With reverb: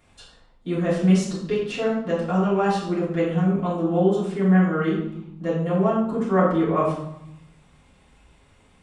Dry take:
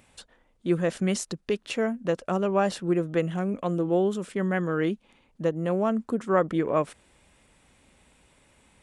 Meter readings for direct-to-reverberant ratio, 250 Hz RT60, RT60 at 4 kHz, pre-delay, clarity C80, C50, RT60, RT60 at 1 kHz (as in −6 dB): −10.5 dB, 1.2 s, 0.60 s, 3 ms, 6.0 dB, 2.5 dB, 0.80 s, 0.85 s